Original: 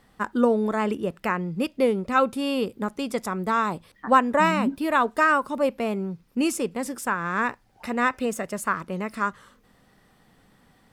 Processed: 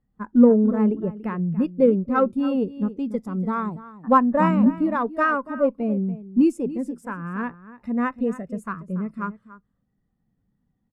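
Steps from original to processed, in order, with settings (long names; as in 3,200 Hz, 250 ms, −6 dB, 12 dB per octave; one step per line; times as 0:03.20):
low-shelf EQ 320 Hz +11 dB
single-tap delay 286 ms −11 dB
harmonic generator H 8 −28 dB, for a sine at −3 dBFS
every bin expanded away from the loudest bin 1.5 to 1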